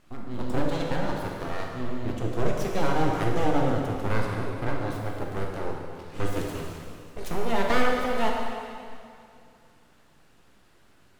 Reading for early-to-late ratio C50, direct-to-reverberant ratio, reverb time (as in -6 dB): 0.5 dB, -1.0 dB, 2.4 s